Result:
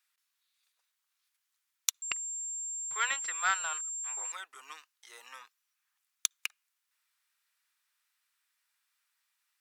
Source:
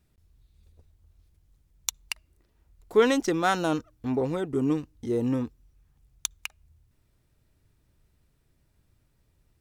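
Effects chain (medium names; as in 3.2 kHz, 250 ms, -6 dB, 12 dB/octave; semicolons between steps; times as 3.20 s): high-pass 1.2 kHz 24 dB/octave; 2.02–4.32 s: class-D stage that switches slowly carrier 7.4 kHz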